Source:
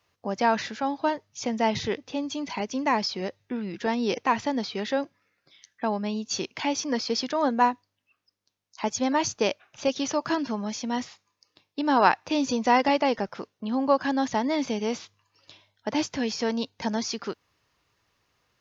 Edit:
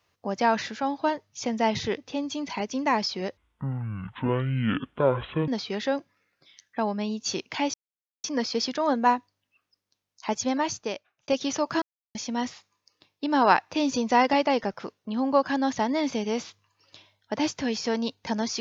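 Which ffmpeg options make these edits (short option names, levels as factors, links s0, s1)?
-filter_complex "[0:a]asplit=7[s0][s1][s2][s3][s4][s5][s6];[s0]atrim=end=3.374[s7];[s1]atrim=start=3.37:end=4.53,asetpts=PTS-STARTPTS,asetrate=24255,aresample=44100[s8];[s2]atrim=start=4.526:end=6.79,asetpts=PTS-STARTPTS,afade=t=out:st=2.26:d=0.004:c=hsin,apad=pad_dur=0.5[s9];[s3]atrim=start=6.79:end=9.83,asetpts=PTS-STARTPTS,afade=t=in:d=0.004:c=hsin,afade=t=out:st=2.18:d=0.86[s10];[s4]atrim=start=9.83:end=10.37,asetpts=PTS-STARTPTS,afade=t=in:d=0.004:c=hsin,afade=t=out:st=0.536:d=0.004:c=hsin[s11];[s5]atrim=start=10.37:end=10.7,asetpts=PTS-STARTPTS,volume=0[s12];[s6]atrim=start=10.7,asetpts=PTS-STARTPTS,afade=t=in:d=0.004:c=hsin[s13];[s7][s8]acrossfade=d=0.004:c1=hsin:c2=hsin[s14];[s9][s10][s11][s12][s13]concat=n=5:v=0:a=1[s15];[s14][s15]acrossfade=d=0.004:c1=hsin:c2=hsin"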